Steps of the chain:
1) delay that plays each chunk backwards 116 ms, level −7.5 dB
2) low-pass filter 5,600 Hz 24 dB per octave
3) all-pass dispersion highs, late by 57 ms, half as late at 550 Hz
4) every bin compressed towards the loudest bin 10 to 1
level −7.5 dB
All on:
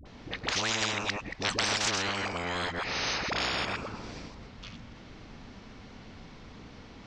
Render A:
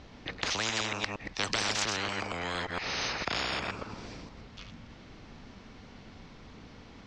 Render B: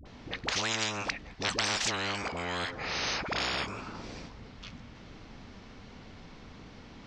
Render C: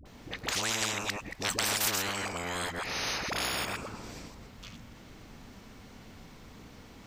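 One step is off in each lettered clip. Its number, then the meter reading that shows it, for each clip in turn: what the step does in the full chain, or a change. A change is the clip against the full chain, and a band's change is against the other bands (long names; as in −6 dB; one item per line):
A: 3, change in crest factor +2.5 dB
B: 1, change in integrated loudness −1.5 LU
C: 2, 8 kHz band +5.5 dB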